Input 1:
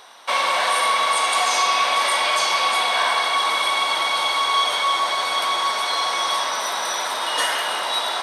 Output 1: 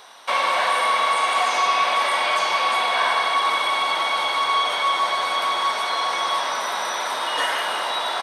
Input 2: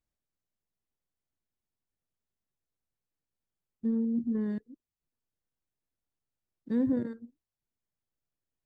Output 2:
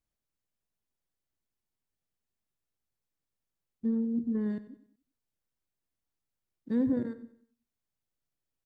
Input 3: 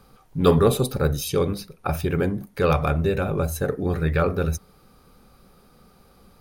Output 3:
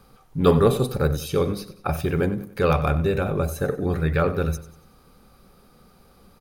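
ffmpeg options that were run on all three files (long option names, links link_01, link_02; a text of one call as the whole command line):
ffmpeg -i in.wav -filter_complex "[0:a]acrossover=split=3200[link_01][link_02];[link_02]acompressor=threshold=-33dB:ratio=4:attack=1:release=60[link_03];[link_01][link_03]amix=inputs=2:normalize=0,aecho=1:1:94|188|282|376:0.178|0.0711|0.0285|0.0114" out.wav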